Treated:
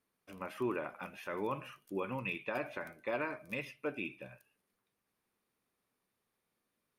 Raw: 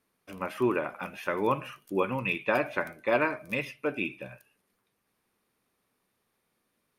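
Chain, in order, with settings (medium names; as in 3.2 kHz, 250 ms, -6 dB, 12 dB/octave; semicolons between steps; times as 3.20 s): peak limiter -18.5 dBFS, peak gain reduction 7 dB; trim -7.5 dB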